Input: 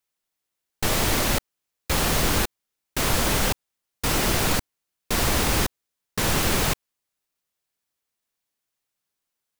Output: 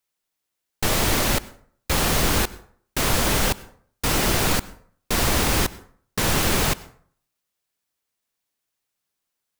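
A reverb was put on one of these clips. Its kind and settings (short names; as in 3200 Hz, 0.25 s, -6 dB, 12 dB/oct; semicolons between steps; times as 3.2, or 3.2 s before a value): plate-style reverb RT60 0.54 s, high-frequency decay 0.6×, pre-delay 85 ms, DRR 19.5 dB; gain +1.5 dB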